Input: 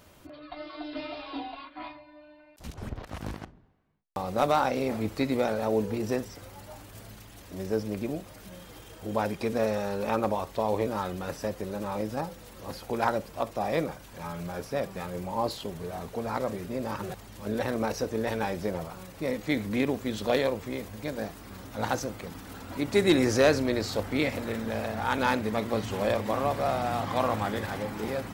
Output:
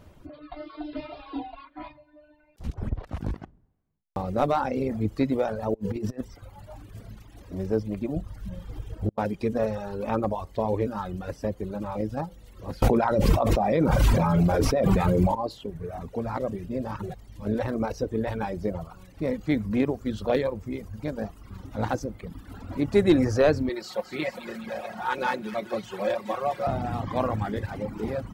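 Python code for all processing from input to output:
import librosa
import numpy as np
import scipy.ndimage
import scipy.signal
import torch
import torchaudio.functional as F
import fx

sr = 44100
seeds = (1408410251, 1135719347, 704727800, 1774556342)

y = fx.chain(x, sr, fx.peak_eq(hz=62.0, db=-12.5, octaves=1.0),
    fx.over_compress(threshold_db=-33.0, ratio=-0.5), at=(5.74, 6.21))
y = fx.chain(y, sr, fx.low_shelf(hz=190.0, db=11.0),
    fx.gate_flip(shuts_db=-20.0, range_db=-34), at=(8.16, 9.18))
y = fx.chain(y, sr, fx.notch(hz=1700.0, q=19.0),
    fx.echo_single(ms=797, db=-22.0),
    fx.env_flatten(amount_pct=100), at=(12.82, 15.35))
y = fx.chain(y, sr, fx.highpass(hz=590.0, slope=6),
    fx.comb(ms=5.5, depth=0.74),
    fx.echo_wet_highpass(ms=211, feedback_pct=63, hz=1700.0, wet_db=-6.5), at=(23.69, 26.67))
y = fx.dereverb_blind(y, sr, rt60_s=1.3)
y = fx.tilt_eq(y, sr, slope=-2.5)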